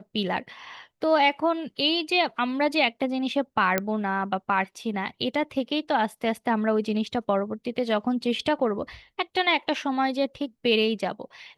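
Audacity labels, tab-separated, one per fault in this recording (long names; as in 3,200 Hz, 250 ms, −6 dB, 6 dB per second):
3.780000	3.780000	click −8 dBFS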